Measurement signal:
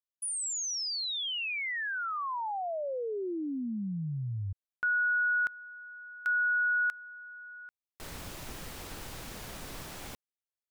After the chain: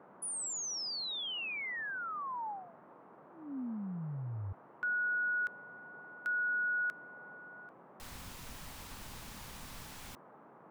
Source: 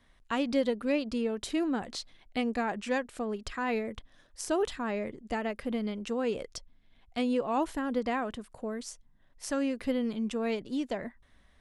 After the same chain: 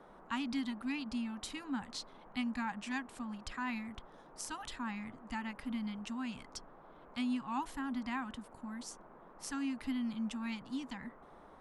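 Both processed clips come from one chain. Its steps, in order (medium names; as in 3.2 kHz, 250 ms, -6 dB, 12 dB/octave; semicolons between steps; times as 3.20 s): elliptic band-stop 270–840 Hz; band noise 140–1200 Hz -53 dBFS; trim -4.5 dB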